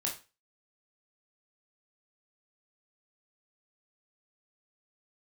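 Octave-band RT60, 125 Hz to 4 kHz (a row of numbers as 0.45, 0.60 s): 0.35, 0.35, 0.30, 0.30, 0.30, 0.30 s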